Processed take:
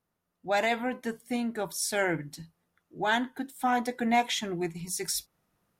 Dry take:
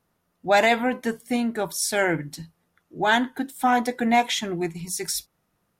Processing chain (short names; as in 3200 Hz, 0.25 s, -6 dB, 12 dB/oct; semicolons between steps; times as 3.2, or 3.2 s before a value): vocal rider 2 s; gain -6.5 dB